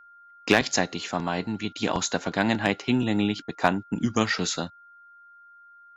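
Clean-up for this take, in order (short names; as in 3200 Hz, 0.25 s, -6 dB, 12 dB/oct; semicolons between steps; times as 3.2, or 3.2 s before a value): clip repair -7 dBFS; notch 1400 Hz, Q 30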